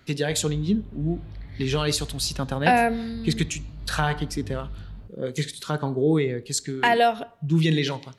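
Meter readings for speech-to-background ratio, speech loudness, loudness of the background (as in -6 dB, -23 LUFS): 16.0 dB, -25.0 LUFS, -41.0 LUFS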